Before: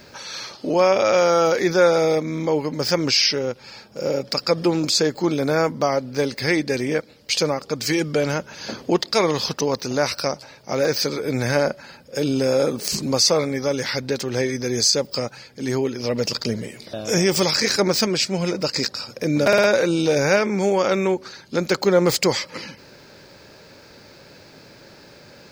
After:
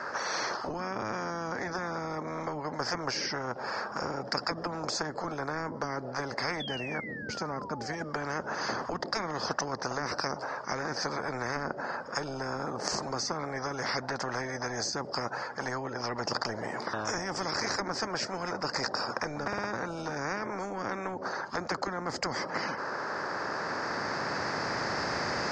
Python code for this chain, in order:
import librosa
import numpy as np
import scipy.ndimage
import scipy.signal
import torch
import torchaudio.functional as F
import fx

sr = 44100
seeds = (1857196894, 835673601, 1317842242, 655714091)

y = fx.recorder_agc(x, sr, target_db=-11.5, rise_db_per_s=7.2, max_gain_db=30)
y = scipy.signal.sosfilt(scipy.signal.butter(4, 7200.0, 'lowpass', fs=sr, output='sos'), y)
y = fx.band_shelf(y, sr, hz=3000.0, db=-14.0, octaves=1.1)
y = fx.spec_paint(y, sr, seeds[0], shape='fall', start_s=6.6, length_s=1.35, low_hz=690.0, high_hz=3500.0, level_db=-16.0)
y = fx.auto_wah(y, sr, base_hz=220.0, top_hz=1300.0, q=2.7, full_db=-14.0, direction='down')
y = fx.spectral_comp(y, sr, ratio=10.0)